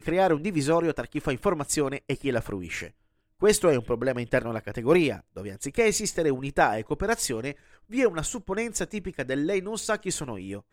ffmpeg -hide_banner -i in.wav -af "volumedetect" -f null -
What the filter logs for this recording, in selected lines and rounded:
mean_volume: -26.8 dB
max_volume: -7.5 dB